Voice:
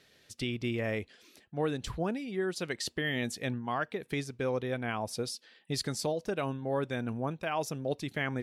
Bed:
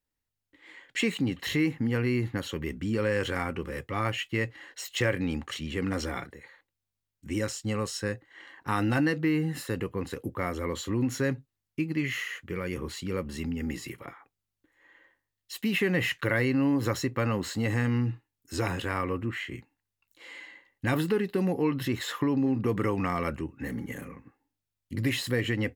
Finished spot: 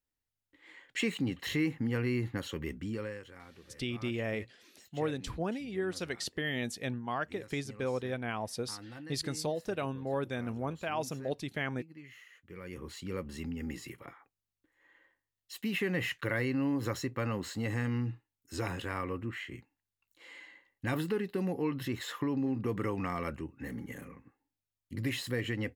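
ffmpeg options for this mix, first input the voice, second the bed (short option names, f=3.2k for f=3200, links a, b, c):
-filter_complex "[0:a]adelay=3400,volume=-2dB[a];[1:a]volume=11dB,afade=t=out:st=2.72:d=0.51:silence=0.141254,afade=t=in:st=12.32:d=0.77:silence=0.16788[b];[a][b]amix=inputs=2:normalize=0"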